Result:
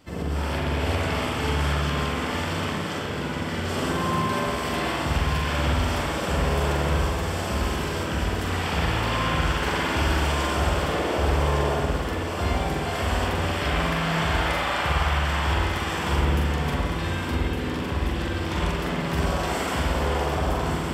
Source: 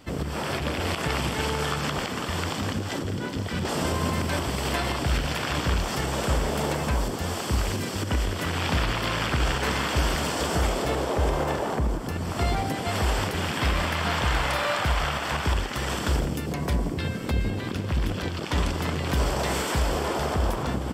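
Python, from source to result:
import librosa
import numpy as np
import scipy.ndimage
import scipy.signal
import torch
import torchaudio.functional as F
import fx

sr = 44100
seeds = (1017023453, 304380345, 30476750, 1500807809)

p1 = fx.doubler(x, sr, ms=43.0, db=-4.5)
p2 = p1 + fx.echo_thinned(p1, sr, ms=1160, feedback_pct=59, hz=420.0, wet_db=-6.5, dry=0)
p3 = fx.rev_spring(p2, sr, rt60_s=1.4, pass_ms=(55,), chirp_ms=65, drr_db=-3.0)
y = p3 * 10.0 ** (-5.0 / 20.0)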